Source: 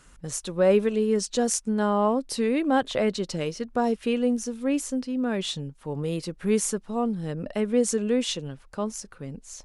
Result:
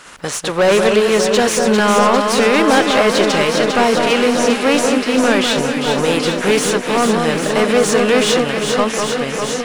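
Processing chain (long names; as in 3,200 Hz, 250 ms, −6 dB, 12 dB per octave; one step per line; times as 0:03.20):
compressing power law on the bin magnitudes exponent 0.69
mid-hump overdrive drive 25 dB, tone 2,800 Hz, clips at −6.5 dBFS
delay that swaps between a low-pass and a high-pass 200 ms, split 1,700 Hz, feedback 87%, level −4.5 dB
level +1.5 dB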